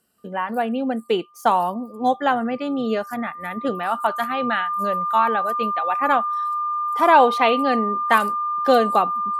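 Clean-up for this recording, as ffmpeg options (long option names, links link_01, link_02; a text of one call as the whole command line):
ffmpeg -i in.wav -af "bandreject=frequency=1200:width=30" out.wav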